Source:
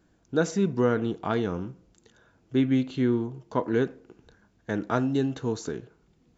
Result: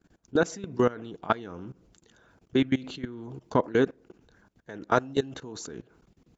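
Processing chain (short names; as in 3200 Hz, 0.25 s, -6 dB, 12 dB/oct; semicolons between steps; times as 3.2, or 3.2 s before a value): harmonic-percussive split percussive +9 dB; level quantiser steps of 20 dB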